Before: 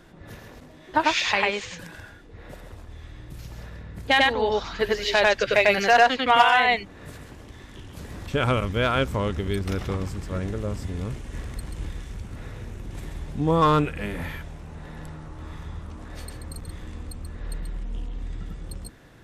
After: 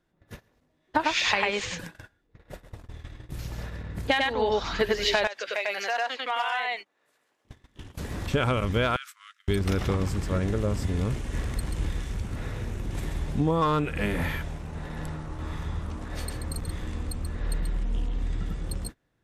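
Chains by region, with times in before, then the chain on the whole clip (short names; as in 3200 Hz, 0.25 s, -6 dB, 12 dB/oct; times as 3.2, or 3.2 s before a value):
5.27–7.45 HPF 550 Hz + compressor 2:1, threshold -40 dBFS
8.96–9.48 steep high-pass 1200 Hz 72 dB/oct + compressor, threshold -36 dBFS
whole clip: gate -39 dBFS, range -27 dB; compressor 12:1, threshold -24 dBFS; gain +4 dB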